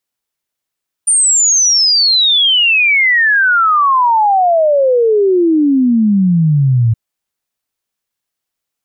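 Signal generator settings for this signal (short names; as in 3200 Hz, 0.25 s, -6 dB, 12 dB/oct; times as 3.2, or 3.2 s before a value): log sweep 9200 Hz -> 110 Hz 5.87 s -7.5 dBFS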